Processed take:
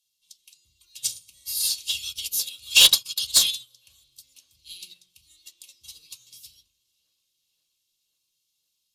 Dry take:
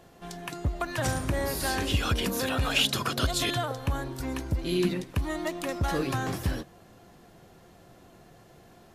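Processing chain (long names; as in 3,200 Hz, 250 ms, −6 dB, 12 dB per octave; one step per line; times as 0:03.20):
inverse Chebyshev high-pass filter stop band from 1,800 Hz, stop band 40 dB
sine wavefolder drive 7 dB, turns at −14.5 dBFS
tape delay 529 ms, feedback 83%, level −20 dB, low-pass 4,600 Hz
convolution reverb RT60 0.35 s, pre-delay 4 ms, DRR 1.5 dB
expander for the loud parts 2.5 to 1, over −36 dBFS
level +7 dB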